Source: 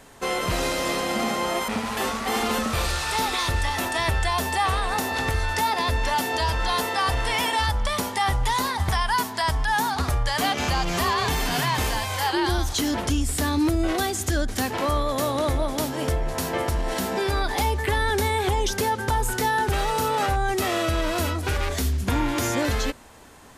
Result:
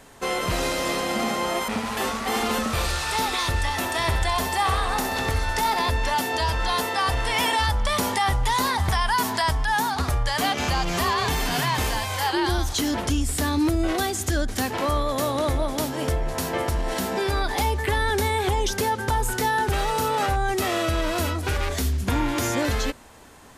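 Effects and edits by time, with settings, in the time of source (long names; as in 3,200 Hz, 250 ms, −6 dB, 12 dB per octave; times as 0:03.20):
0:03.82–0:05.90: repeating echo 65 ms, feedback 58%, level −9 dB
0:07.36–0:09.53: envelope flattener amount 50%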